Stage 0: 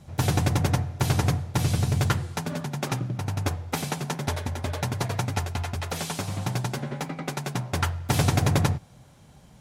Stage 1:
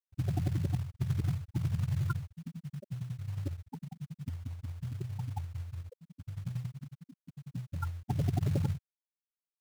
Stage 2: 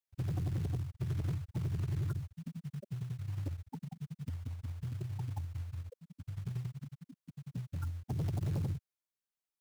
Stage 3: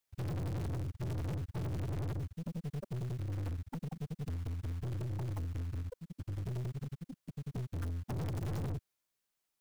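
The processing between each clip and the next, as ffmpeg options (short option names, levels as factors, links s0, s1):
-af "afftfilt=real='re*gte(hypot(re,im),0.251)':imag='im*gte(hypot(re,im),0.251)':win_size=1024:overlap=0.75,acrusher=bits=5:mode=log:mix=0:aa=0.000001,volume=0.447"
-filter_complex "[0:a]acrossover=split=350|450|4100[s0][s1][s2][s3];[s2]alimiter=level_in=5.31:limit=0.0631:level=0:latency=1:release=182,volume=0.188[s4];[s0][s1][s4][s3]amix=inputs=4:normalize=0,asoftclip=type=tanh:threshold=0.0335"
-af "aeval=exprs='(tanh(158*val(0)+0.3)-tanh(0.3))/158':c=same,volume=2.66"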